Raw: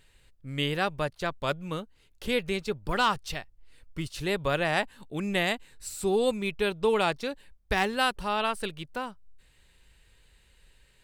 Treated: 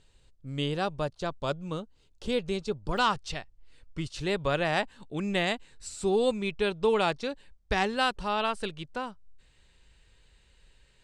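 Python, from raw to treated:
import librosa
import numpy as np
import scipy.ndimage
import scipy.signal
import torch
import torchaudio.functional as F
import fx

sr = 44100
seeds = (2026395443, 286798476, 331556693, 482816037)

y = scipy.signal.sosfilt(scipy.signal.butter(4, 8100.0, 'lowpass', fs=sr, output='sos'), x)
y = fx.peak_eq(y, sr, hz=2000.0, db=fx.steps((0.0, -10.0), (2.98, -2.5)), octaves=1.0)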